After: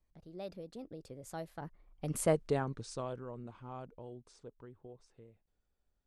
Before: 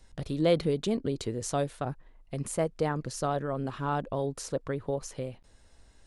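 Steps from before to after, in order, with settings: Doppler pass-by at 2.28, 45 m/s, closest 10 m; mismatched tape noise reduction decoder only

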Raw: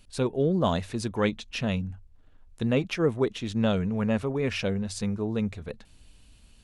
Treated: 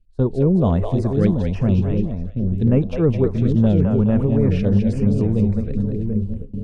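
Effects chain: on a send: split-band echo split 470 Hz, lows 0.735 s, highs 0.21 s, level -4 dB; on the sum: gate with hold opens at -27 dBFS; tilt -4 dB/oct; stepped notch 7.1 Hz 940–4700 Hz

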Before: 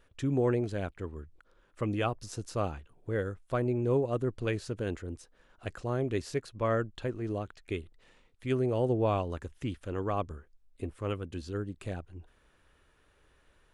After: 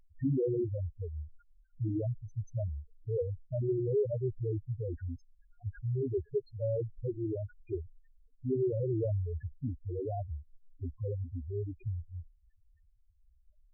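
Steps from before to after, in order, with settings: treble ducked by the level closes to 640 Hz, closed at -25 dBFS; sine folder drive 4 dB, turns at -18.5 dBFS; loudest bins only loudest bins 2; gain -2 dB

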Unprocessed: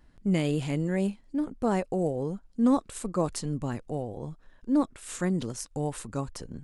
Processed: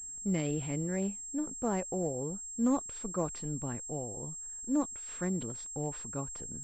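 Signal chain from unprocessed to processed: careless resampling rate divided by 3×, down none, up hold; pulse-width modulation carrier 7500 Hz; gain -6 dB

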